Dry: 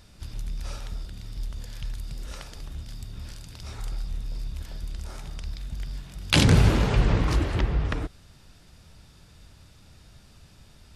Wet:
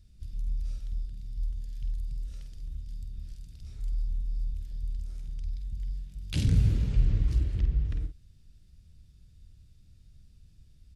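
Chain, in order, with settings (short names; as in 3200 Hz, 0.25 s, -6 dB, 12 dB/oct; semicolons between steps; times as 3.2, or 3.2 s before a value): passive tone stack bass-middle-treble 10-0-1; doubler 49 ms -8 dB; gain +5 dB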